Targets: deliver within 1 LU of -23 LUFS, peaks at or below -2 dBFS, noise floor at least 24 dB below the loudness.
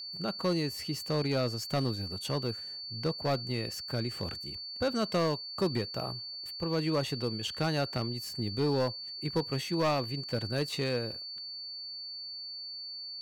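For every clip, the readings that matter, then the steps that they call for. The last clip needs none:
clipped 1.0%; flat tops at -23.0 dBFS; steady tone 4500 Hz; tone level -39 dBFS; loudness -33.0 LUFS; peak -23.0 dBFS; loudness target -23.0 LUFS
-> clip repair -23 dBFS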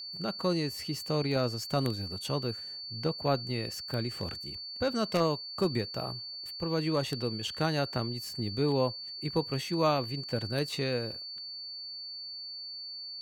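clipped 0.0%; steady tone 4500 Hz; tone level -39 dBFS
-> notch 4500 Hz, Q 30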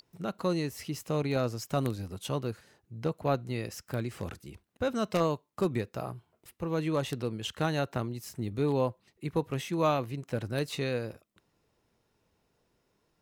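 steady tone none; loudness -32.5 LUFS; peak -14.0 dBFS; loudness target -23.0 LUFS
-> gain +9.5 dB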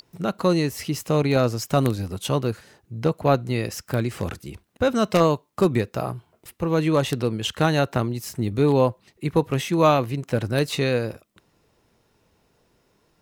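loudness -23.0 LUFS; peak -4.5 dBFS; noise floor -66 dBFS

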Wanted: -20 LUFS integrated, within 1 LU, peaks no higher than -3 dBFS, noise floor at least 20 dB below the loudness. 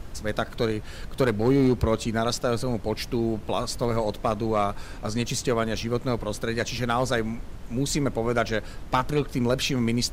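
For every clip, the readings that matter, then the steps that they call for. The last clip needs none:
clipped 0.3%; flat tops at -13.5 dBFS; noise floor -39 dBFS; noise floor target -47 dBFS; loudness -26.5 LUFS; peak -13.5 dBFS; loudness target -20.0 LUFS
-> clip repair -13.5 dBFS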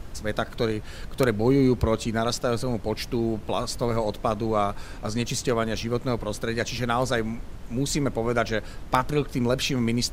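clipped 0.0%; noise floor -39 dBFS; noise floor target -46 dBFS
-> noise print and reduce 7 dB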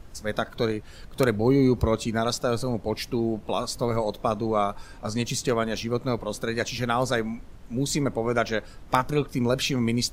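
noise floor -45 dBFS; noise floor target -47 dBFS
-> noise print and reduce 6 dB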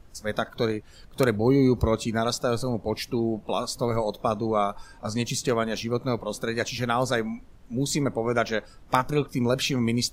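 noise floor -49 dBFS; loudness -26.5 LUFS; peak -4.5 dBFS; loudness target -20.0 LUFS
-> gain +6.5 dB; limiter -3 dBFS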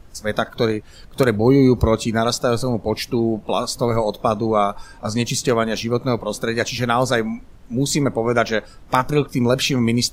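loudness -20.0 LUFS; peak -3.0 dBFS; noise floor -43 dBFS

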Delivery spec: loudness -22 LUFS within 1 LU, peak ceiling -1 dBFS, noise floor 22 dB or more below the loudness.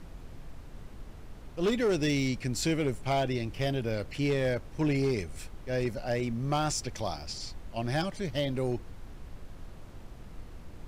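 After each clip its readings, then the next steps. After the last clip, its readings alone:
clipped 0.9%; flat tops at -22.0 dBFS; noise floor -47 dBFS; noise floor target -53 dBFS; loudness -31.0 LUFS; peak -22.0 dBFS; loudness target -22.0 LUFS
-> clip repair -22 dBFS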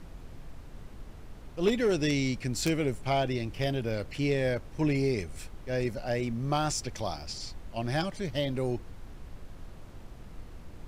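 clipped 0.0%; noise floor -47 dBFS; noise floor target -53 dBFS
-> noise print and reduce 6 dB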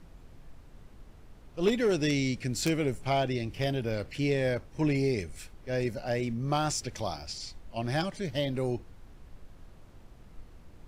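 noise floor -52 dBFS; noise floor target -53 dBFS
-> noise print and reduce 6 dB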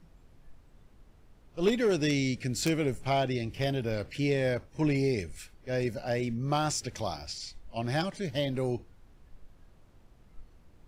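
noise floor -58 dBFS; loudness -30.5 LUFS; peak -13.0 dBFS; loudness target -22.0 LUFS
-> gain +8.5 dB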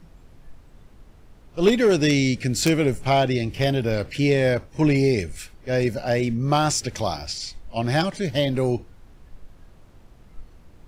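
loudness -22.0 LUFS; peak -4.5 dBFS; noise floor -50 dBFS

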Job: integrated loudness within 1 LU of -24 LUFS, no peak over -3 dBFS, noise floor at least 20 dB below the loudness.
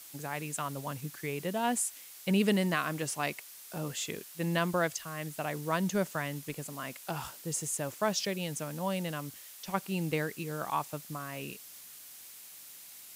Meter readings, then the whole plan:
noise floor -50 dBFS; noise floor target -54 dBFS; loudness -34.0 LUFS; peak -16.0 dBFS; loudness target -24.0 LUFS
-> noise print and reduce 6 dB; gain +10 dB

